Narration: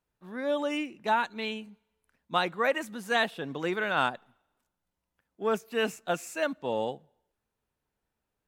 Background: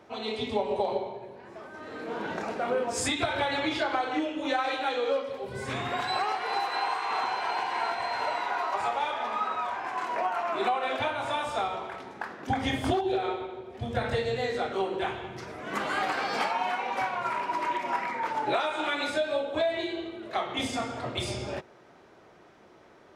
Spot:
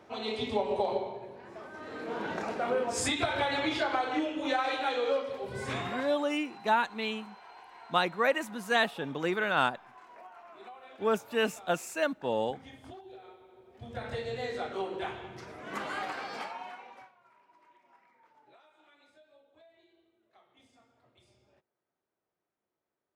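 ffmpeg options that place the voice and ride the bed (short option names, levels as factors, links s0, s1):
-filter_complex "[0:a]adelay=5600,volume=1[s0];[1:a]volume=5.31,afade=t=out:st=5.76:d=0.41:silence=0.1,afade=t=in:st=13.42:d=1.05:silence=0.158489,afade=t=out:st=15.79:d=1.35:silence=0.0398107[s1];[s0][s1]amix=inputs=2:normalize=0"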